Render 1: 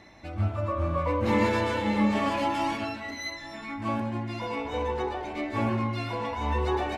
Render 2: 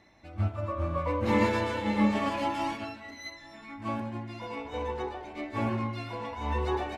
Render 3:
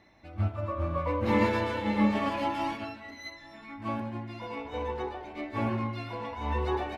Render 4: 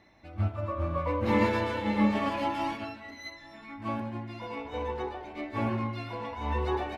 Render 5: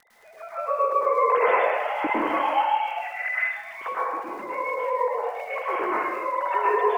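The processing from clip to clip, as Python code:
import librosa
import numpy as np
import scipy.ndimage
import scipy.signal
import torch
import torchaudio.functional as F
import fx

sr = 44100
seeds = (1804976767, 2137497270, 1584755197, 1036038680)

y1 = fx.upward_expand(x, sr, threshold_db=-37.0, expansion=1.5)
y2 = fx.peak_eq(y1, sr, hz=7600.0, db=-6.5, octaves=0.86)
y3 = y2
y4 = fx.sine_speech(y3, sr)
y4 = fx.dmg_crackle(y4, sr, seeds[0], per_s=55.0, level_db=-40.0)
y4 = fx.rev_plate(y4, sr, seeds[1], rt60_s=1.0, hf_ratio=0.85, predelay_ms=95, drr_db=-8.0)
y4 = F.gain(torch.from_numpy(y4), -2.5).numpy()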